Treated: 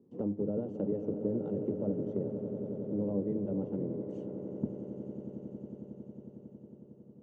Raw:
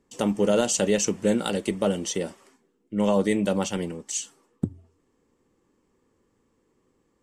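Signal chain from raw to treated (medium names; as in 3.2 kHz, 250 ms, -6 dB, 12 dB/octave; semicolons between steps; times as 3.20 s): octave divider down 1 oct, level +3 dB; Butterworth band-pass 280 Hz, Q 0.9; compression 2.5:1, threshold -45 dBFS, peak gain reduction 18 dB; on a send: echo with a slow build-up 91 ms, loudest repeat 8, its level -14 dB; on the sum: trim +6 dB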